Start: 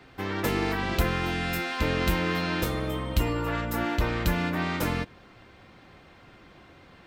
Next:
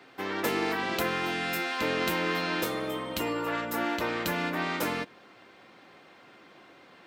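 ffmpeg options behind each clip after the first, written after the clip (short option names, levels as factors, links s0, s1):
-af "highpass=260"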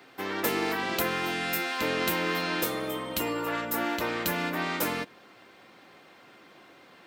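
-af "highshelf=f=8900:g=9.5"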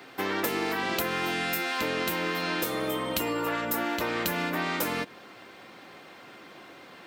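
-af "acompressor=threshold=0.0282:ratio=6,volume=1.88"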